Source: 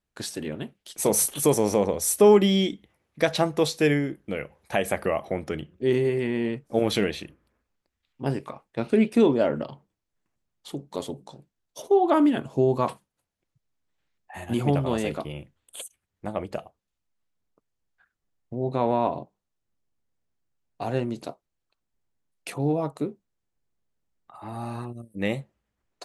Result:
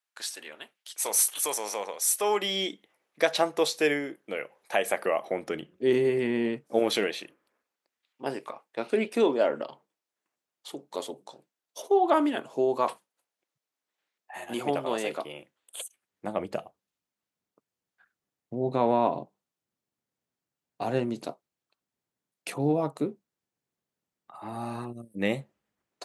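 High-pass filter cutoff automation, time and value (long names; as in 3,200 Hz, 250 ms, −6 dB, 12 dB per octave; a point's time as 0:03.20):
0:02.19 1,000 Hz
0:02.72 420 Hz
0:04.95 420 Hz
0:06.35 160 Hz
0:07.09 410 Hz
0:15.84 410 Hz
0:16.46 150 Hz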